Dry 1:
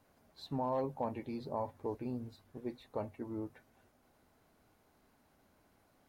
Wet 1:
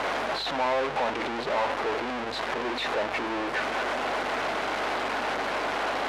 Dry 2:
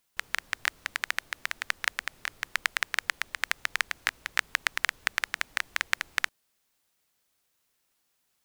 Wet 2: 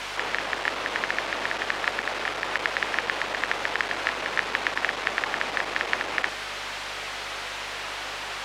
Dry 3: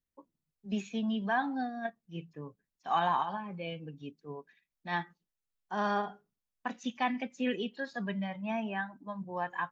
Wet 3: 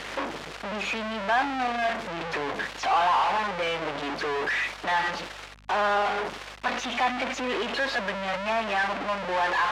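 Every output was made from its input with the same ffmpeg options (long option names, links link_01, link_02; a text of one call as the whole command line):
ffmpeg -i in.wav -af "aeval=exprs='val(0)+0.5*0.119*sgn(val(0))':channel_layout=same,highpass=490,lowpass=2900,aeval=exprs='val(0)+0.00251*(sin(2*PI*50*n/s)+sin(2*PI*2*50*n/s)/2+sin(2*PI*3*50*n/s)/3+sin(2*PI*4*50*n/s)/4+sin(2*PI*5*50*n/s)/5)':channel_layout=same" out.wav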